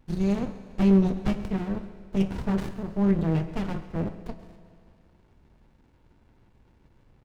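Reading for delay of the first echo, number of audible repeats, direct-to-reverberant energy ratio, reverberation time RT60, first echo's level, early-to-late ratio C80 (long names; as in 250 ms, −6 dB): 134 ms, 1, 10.5 dB, 2.3 s, −17.0 dB, 12.0 dB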